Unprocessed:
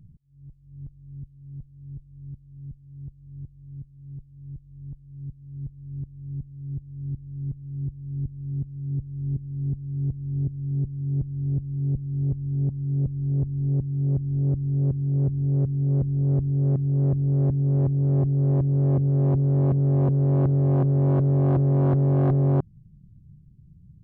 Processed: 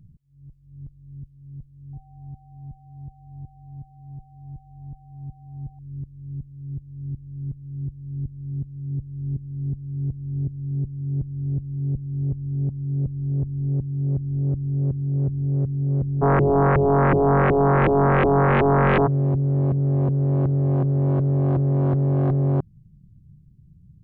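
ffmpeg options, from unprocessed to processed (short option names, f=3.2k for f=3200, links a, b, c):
-filter_complex "[0:a]asettb=1/sr,asplit=3[a][b][c];[a]atrim=end=1.934[d];[b]atrim=start=1.93:end=5.79,asetpts=PTS-STARTPTS,afade=t=in:d=0.004:c=qsin,afade=t=out:st=3.856:d=0.004:c=qsin,aeval=exprs='val(0)+0.00178*sin(2*PI*770*n/s)':c=same[e];[c]atrim=start=5.786[f];[d][e]acrossfade=d=0.004:c1=hsin:c2=qsin[g];[g][f]acrossfade=d=0.004:c1=qsin:c2=hsin,asplit=3[h][i][j];[h]afade=t=out:st=16.21:d=0.02[k];[i]aeval=exprs='0.2*sin(PI/2*5.01*val(0)/0.2)':c=same,afade=t=in:st=16.21:d=0.02,afade=t=out:st=19.06:d=0.02[l];[j]afade=t=in:st=19.06:d=0.02[m];[k][l][m]amix=inputs=3:normalize=0"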